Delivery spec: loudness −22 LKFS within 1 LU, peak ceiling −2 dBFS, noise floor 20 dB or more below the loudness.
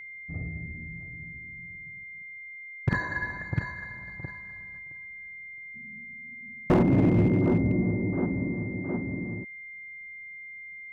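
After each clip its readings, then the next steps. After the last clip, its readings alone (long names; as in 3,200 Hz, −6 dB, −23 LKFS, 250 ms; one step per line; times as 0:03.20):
share of clipped samples 0.8%; peaks flattened at −16.5 dBFS; interfering tone 2,100 Hz; level of the tone −40 dBFS; integrated loudness −29.0 LKFS; sample peak −16.5 dBFS; target loudness −22.0 LKFS
→ clipped peaks rebuilt −16.5 dBFS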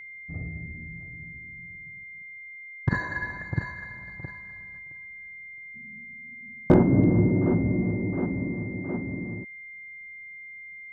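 share of clipped samples 0.0%; interfering tone 2,100 Hz; level of the tone −40 dBFS
→ notch filter 2,100 Hz, Q 30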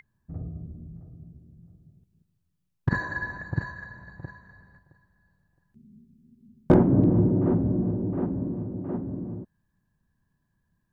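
interfering tone none found; integrated loudness −25.5 LKFS; sample peak −7.5 dBFS; target loudness −22.0 LKFS
→ level +3.5 dB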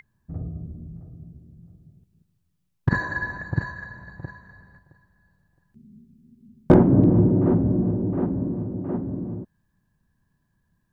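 integrated loudness −22.5 LKFS; sample peak −4.0 dBFS; background noise floor −72 dBFS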